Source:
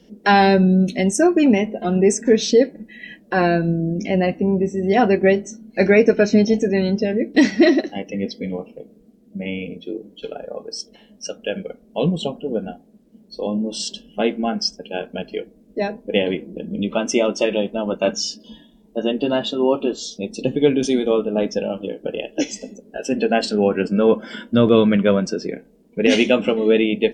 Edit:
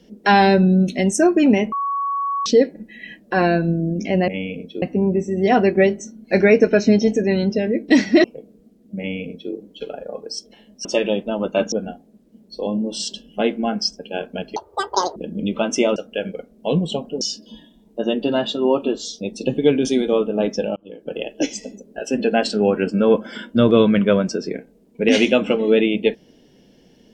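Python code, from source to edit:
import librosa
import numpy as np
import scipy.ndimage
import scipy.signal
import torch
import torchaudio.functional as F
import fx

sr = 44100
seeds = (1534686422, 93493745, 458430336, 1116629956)

y = fx.edit(x, sr, fx.bleep(start_s=1.72, length_s=0.74, hz=1120.0, db=-19.5),
    fx.cut(start_s=7.7, length_s=0.96),
    fx.duplicate(start_s=9.4, length_s=0.54, to_s=4.28),
    fx.swap(start_s=11.27, length_s=1.25, other_s=17.32, other_length_s=0.87),
    fx.speed_span(start_s=15.36, length_s=1.16, speed=1.93),
    fx.fade_in_span(start_s=21.74, length_s=0.48), tone=tone)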